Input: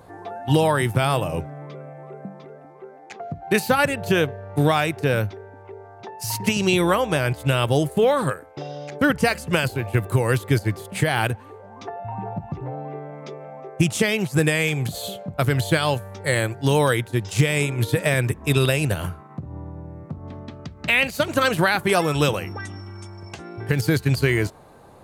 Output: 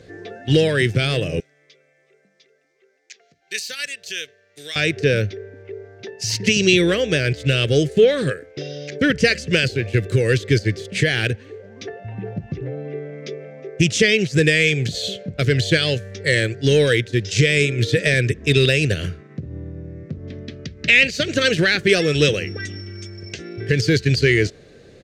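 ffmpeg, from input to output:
ffmpeg -i in.wav -filter_complex "[0:a]asettb=1/sr,asplit=3[link_01][link_02][link_03];[link_01]atrim=end=1.404[link_04];[link_02]atrim=start=1.4:end=4.76,asetpts=PTS-STARTPTS,afade=type=in:duration=0.004:curve=qsin,afade=type=out:start_time=3.356:duration=0.004:curve=qsin,aderivative[link_05];[link_03]atrim=start=4.756[link_06];[link_04][link_05]acrossfade=duration=0.004:curve1=hsin:curve2=qsin[link_07];[link_07][link_06]acrossfade=duration=0.004:curve1=qsin:curve2=hsin,acontrast=58,firequalizer=gain_entry='entry(300,0);entry(440,5);entry(900,-23);entry(1700,4);entry(5800,7);entry(11000,-17)':delay=0.05:min_phase=1,volume=-3.5dB" out.wav

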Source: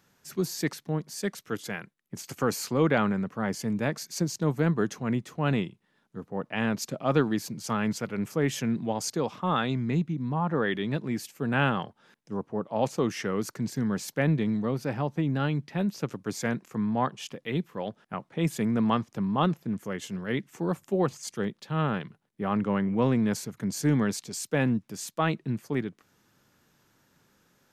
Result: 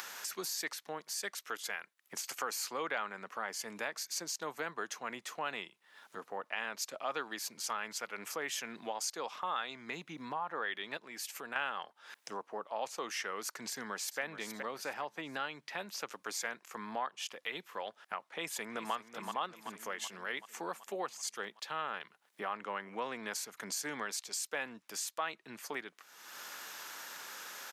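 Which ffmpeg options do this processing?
ffmpeg -i in.wav -filter_complex "[0:a]asettb=1/sr,asplit=3[link_01][link_02][link_03];[link_01]atrim=end=10.974[link_04];[link_02]atrim=start=10.97:end=11.56,asetpts=PTS-STARTPTS,afade=type=in:duration=0.004:curve=qsin,afade=type=out:start_time=0.586:duration=0.004:curve=qsin,acompressor=threshold=-42dB:ratio=2:attack=3.2:release=140:knee=1:detection=peak[link_05];[link_03]atrim=start=11.556[link_06];[link_04][link_05]acrossfade=duration=0.004:curve1=hsin:curve2=qsin[link_07];[link_07][link_06]acrossfade=duration=0.004:curve1=qsin:curve2=hsin,asplit=2[link_08][link_09];[link_09]afade=type=in:start_time=13.69:duration=0.01,afade=type=out:start_time=14.2:duration=0.01,aecho=0:1:420|840|1260:0.316228|0.0948683|0.0284605[link_10];[link_08][link_10]amix=inputs=2:normalize=0,asplit=2[link_11][link_12];[link_12]afade=type=in:start_time=18.18:duration=0.01,afade=type=out:start_time=18.93:duration=0.01,aecho=0:1:380|760|1140|1520|1900|2280|2660:0.316228|0.189737|0.113842|0.0683052|0.0409831|0.0245899|0.0147539[link_13];[link_11][link_13]amix=inputs=2:normalize=0,acompressor=mode=upward:threshold=-39dB:ratio=2.5,highpass=860,acompressor=threshold=-51dB:ratio=2.5,volume=9.5dB" out.wav

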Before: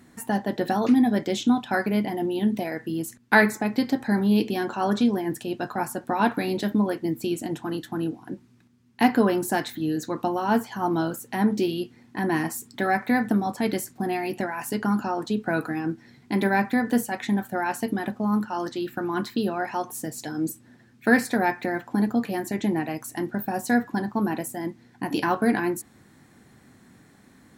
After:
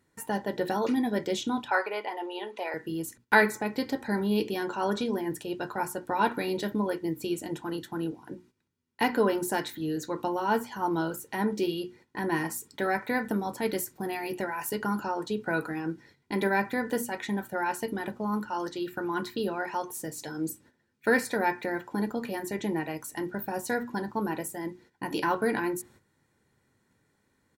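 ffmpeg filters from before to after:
ffmpeg -i in.wav -filter_complex "[0:a]asettb=1/sr,asplit=3[link_01][link_02][link_03];[link_01]atrim=end=1.684[link_04];[link_02]atrim=start=1.68:end=2.74,asetpts=PTS-STARTPTS,afade=type=in:duration=0.004:curve=qsin,afade=type=out:start_time=1.056:duration=0.004:curve=qsin,highpass=frequency=420:width=0.5412,highpass=frequency=420:width=1.3066,equalizer=frequency=850:width_type=q:width=4:gain=6,equalizer=frequency=1200:width_type=q:width=4:gain=8,equalizer=frequency=2600:width_type=q:width=4:gain=5,equalizer=frequency=5600:width_type=q:width=4:gain=-6,equalizer=frequency=8200:width_type=q:width=4:gain=-10,lowpass=frequency=9500:width=0.5412,lowpass=frequency=9500:width=1.3066[link_05];[link_03]atrim=start=2.736[link_06];[link_04][link_05]acrossfade=duration=0.004:curve1=hsin:curve2=qsin[link_07];[link_07][link_06]acrossfade=duration=0.004:curve1=qsin:curve2=hsin,asettb=1/sr,asplit=3[link_08][link_09][link_10];[link_08]atrim=end=13.254[link_11];[link_09]atrim=start=13.25:end=15,asetpts=PTS-STARTPTS,afade=type=in:duration=0.004:curve=qsin,afade=type=out:start_time=1.746:duration=0.004:curve=qsin,equalizer=frequency=14000:width=1.2:gain=6[link_12];[link_10]atrim=start=14.996[link_13];[link_11][link_12]acrossfade=duration=0.004:curve1=hsin:curve2=qsin[link_14];[link_14][link_13]acrossfade=duration=0.004:curve1=qsin:curve2=hsin,bandreject=frequency=60:width_type=h:width=6,bandreject=frequency=120:width_type=h:width=6,bandreject=frequency=180:width_type=h:width=6,bandreject=frequency=240:width_type=h:width=6,bandreject=frequency=300:width_type=h:width=6,bandreject=frequency=360:width_type=h:width=6,agate=range=-12dB:threshold=-50dB:ratio=16:detection=peak,aecho=1:1:2.1:0.43,volume=-3.5dB" out.wav

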